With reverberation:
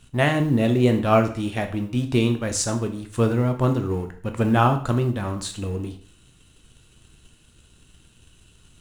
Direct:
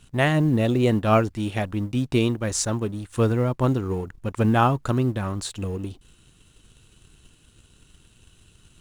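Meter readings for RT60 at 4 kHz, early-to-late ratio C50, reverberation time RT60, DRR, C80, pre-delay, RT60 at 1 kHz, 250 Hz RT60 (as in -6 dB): 0.45 s, 11.5 dB, 0.50 s, 6.0 dB, 15.5 dB, 6 ms, 0.50 s, 0.50 s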